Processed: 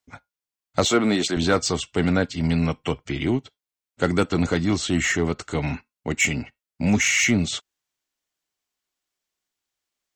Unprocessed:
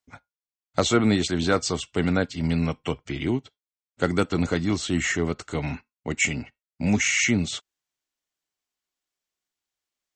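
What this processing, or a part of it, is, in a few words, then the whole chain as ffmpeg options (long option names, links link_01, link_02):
parallel distortion: -filter_complex "[0:a]asplit=2[link_01][link_02];[link_02]asoftclip=type=hard:threshold=-21.5dB,volume=-7dB[link_03];[link_01][link_03]amix=inputs=2:normalize=0,asettb=1/sr,asplit=3[link_04][link_05][link_06];[link_04]atrim=end=0.854[link_07];[link_05]atrim=start=0.85:end=1.37,asetpts=PTS-STARTPTS,afade=type=in:duration=0.004:curve=qsin,afade=type=out:start_time=0.516:duration=0.004:curve=qsin,highpass=210[link_08];[link_06]atrim=start=1.366[link_09];[link_07][link_08]acrossfade=duration=0.004:curve1=hsin:curve2=qsin[link_10];[link_10][link_09]acrossfade=duration=0.004:curve1=qsin:curve2=hsin"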